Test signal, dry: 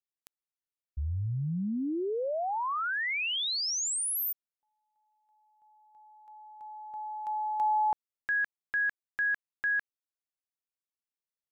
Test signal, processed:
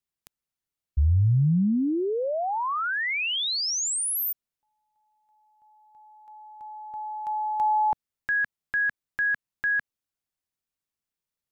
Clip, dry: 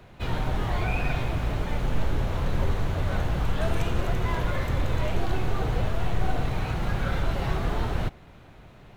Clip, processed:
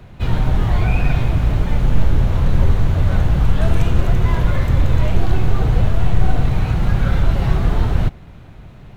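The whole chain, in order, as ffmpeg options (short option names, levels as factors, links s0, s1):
-af "bass=f=250:g=8,treble=f=4000:g=0,volume=1.58"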